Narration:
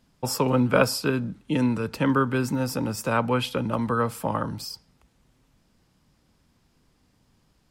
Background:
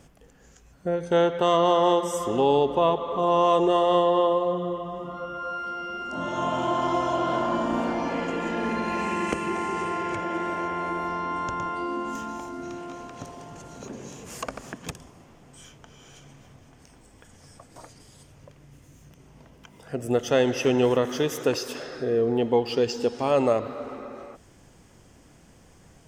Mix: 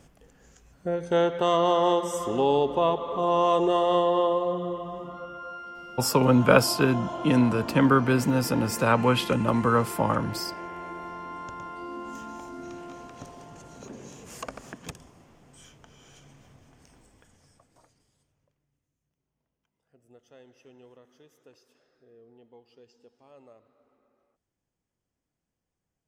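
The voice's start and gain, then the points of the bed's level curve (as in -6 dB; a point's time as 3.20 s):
5.75 s, +2.0 dB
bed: 4.94 s -2 dB
5.72 s -9 dB
11.68 s -9 dB
12.55 s -4 dB
16.99 s -4 dB
18.94 s -32 dB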